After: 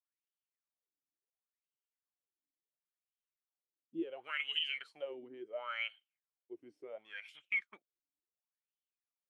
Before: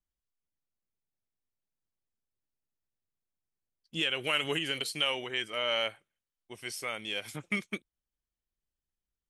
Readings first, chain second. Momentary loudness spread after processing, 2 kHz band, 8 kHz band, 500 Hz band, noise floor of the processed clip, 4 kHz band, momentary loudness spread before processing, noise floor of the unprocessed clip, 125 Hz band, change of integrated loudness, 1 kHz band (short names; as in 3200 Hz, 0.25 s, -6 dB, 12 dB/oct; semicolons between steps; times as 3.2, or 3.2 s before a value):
16 LU, -6.0 dB, under -30 dB, -9.0 dB, under -85 dBFS, -10.0 dB, 12 LU, under -85 dBFS, -26.5 dB, -7.5 dB, -9.5 dB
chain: wah 0.71 Hz 280–3100 Hz, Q 9.6; gain +3.5 dB